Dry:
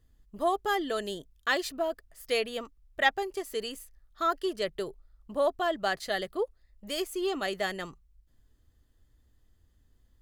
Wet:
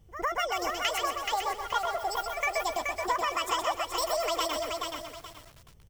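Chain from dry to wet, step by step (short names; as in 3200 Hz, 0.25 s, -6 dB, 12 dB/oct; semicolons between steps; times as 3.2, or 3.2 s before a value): spectral gain 2–3.66, 1300–11000 Hz -12 dB; speed mistake 45 rpm record played at 78 rpm; pre-echo 0.107 s -20 dB; compressor 6:1, threshold -33 dBFS, peak gain reduction 10.5 dB; on a send: feedback echo 0.126 s, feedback 32%, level -5.5 dB; on the sum: lo-fi delay 0.427 s, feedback 35%, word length 9-bit, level -3.5 dB; gain +5.5 dB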